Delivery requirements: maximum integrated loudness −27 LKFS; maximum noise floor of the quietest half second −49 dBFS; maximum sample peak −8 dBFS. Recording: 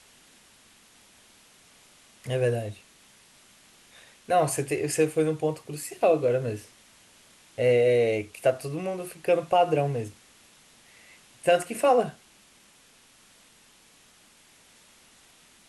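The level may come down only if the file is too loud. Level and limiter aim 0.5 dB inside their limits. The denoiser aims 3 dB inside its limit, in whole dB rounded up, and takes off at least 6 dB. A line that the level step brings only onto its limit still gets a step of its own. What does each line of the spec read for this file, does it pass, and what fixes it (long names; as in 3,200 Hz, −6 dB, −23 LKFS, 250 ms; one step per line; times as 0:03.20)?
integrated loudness −25.5 LKFS: out of spec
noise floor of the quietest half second −58 dBFS: in spec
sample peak −9.5 dBFS: in spec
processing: level −2 dB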